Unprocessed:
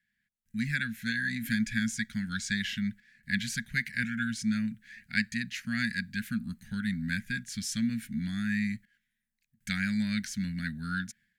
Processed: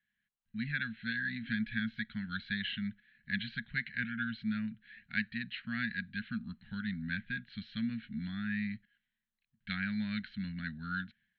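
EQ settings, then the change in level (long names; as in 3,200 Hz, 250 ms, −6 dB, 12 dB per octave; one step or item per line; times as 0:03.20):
Chebyshev low-pass with heavy ripple 4,200 Hz, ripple 6 dB
0.0 dB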